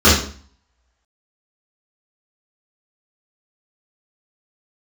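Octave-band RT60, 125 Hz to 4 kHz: 0.55, 0.55, 0.45, 0.45, 0.45, 0.45 seconds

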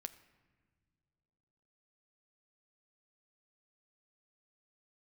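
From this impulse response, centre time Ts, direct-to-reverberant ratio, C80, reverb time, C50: 6 ms, 10.0 dB, 16.5 dB, non-exponential decay, 15.0 dB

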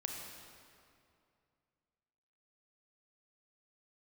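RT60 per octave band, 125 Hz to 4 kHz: 2.9, 2.6, 2.5, 2.4, 2.1, 1.8 seconds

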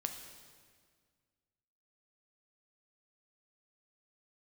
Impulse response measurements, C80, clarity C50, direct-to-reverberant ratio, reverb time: 8.5 dB, 7.0 dB, 5.0 dB, 1.8 s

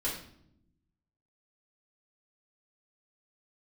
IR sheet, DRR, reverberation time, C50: −6.5 dB, 0.70 s, 5.0 dB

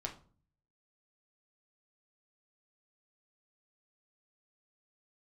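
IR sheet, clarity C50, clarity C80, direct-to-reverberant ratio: 12.0 dB, 17.0 dB, 1.0 dB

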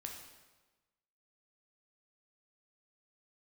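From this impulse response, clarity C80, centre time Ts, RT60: 6.5 dB, 41 ms, 1.2 s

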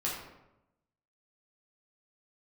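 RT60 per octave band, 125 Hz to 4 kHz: 1.1, 1.0, 0.95, 0.85, 0.75, 0.55 seconds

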